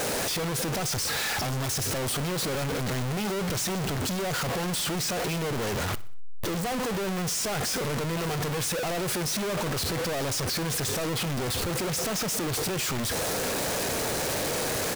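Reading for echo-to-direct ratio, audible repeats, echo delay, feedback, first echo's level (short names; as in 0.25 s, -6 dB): -18.5 dB, 3, 62 ms, 46%, -19.5 dB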